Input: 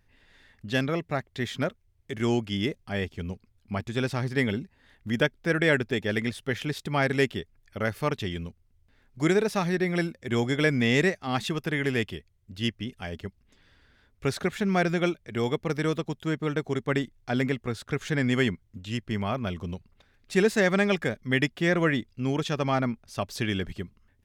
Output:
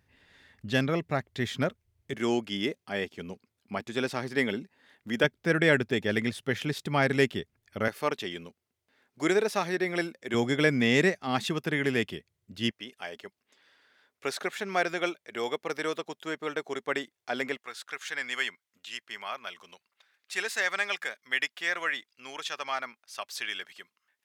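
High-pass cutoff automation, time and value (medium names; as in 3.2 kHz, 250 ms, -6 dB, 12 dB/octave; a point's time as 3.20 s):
66 Hz
from 2.14 s 250 Hz
from 5.24 s 110 Hz
from 7.88 s 320 Hz
from 10.34 s 150 Hz
from 12.71 s 480 Hz
from 17.57 s 1.1 kHz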